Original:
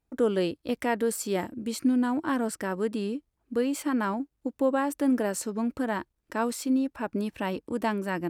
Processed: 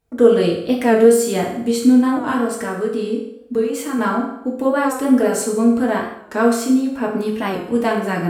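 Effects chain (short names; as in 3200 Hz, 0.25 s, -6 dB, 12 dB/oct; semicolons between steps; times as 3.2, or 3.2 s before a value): 2.33–3.99 compressor, threshold -29 dBFS, peak gain reduction 8 dB; reverb RT60 0.80 s, pre-delay 3 ms, DRR -3 dB; record warp 45 rpm, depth 100 cents; gain +5.5 dB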